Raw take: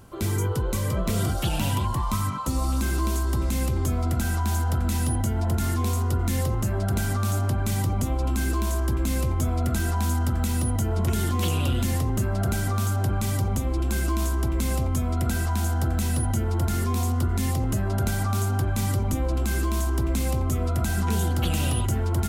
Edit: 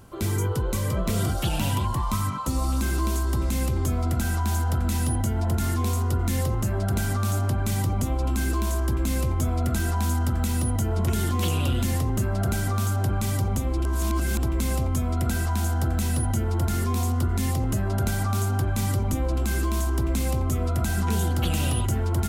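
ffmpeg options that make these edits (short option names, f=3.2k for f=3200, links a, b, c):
-filter_complex "[0:a]asplit=3[a][b][c];[a]atrim=end=13.852[d];[b]atrim=start=13.848:end=14.432,asetpts=PTS-STARTPTS,areverse[e];[c]atrim=start=14.428[f];[d][e]acrossfade=d=0.004:c1=hsin:c2=hsin[g];[g][f]acrossfade=d=0.004:c1=hsin:c2=hsin"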